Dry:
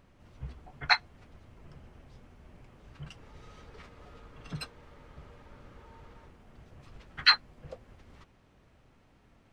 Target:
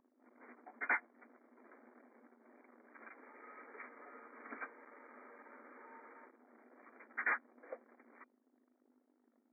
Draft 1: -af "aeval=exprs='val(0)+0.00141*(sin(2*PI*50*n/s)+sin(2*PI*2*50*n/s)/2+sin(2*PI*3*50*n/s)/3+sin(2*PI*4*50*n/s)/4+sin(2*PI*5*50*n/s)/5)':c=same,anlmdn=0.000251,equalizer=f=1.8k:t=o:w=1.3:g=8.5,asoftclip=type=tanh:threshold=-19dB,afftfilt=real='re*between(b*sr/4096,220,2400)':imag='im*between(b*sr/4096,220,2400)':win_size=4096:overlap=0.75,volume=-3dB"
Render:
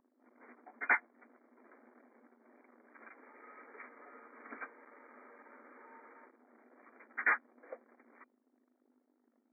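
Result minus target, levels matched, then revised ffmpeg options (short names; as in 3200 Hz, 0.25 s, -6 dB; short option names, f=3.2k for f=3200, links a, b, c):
soft clip: distortion -4 dB
-af "aeval=exprs='val(0)+0.00141*(sin(2*PI*50*n/s)+sin(2*PI*2*50*n/s)/2+sin(2*PI*3*50*n/s)/3+sin(2*PI*4*50*n/s)/4+sin(2*PI*5*50*n/s)/5)':c=same,anlmdn=0.000251,equalizer=f=1.8k:t=o:w=1.3:g=8.5,asoftclip=type=tanh:threshold=-25.5dB,afftfilt=real='re*between(b*sr/4096,220,2400)':imag='im*between(b*sr/4096,220,2400)':win_size=4096:overlap=0.75,volume=-3dB"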